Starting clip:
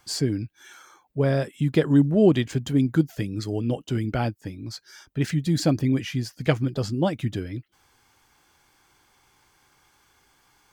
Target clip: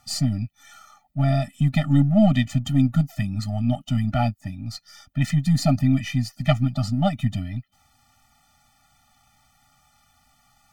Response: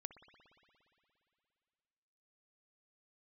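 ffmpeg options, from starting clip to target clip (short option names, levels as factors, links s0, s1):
-af "aeval=exprs='if(lt(val(0),0),0.708*val(0),val(0))':c=same,afftfilt=real='re*eq(mod(floor(b*sr/1024/290),2),0)':imag='im*eq(mod(floor(b*sr/1024/290),2),0)':win_size=1024:overlap=0.75,volume=1.88"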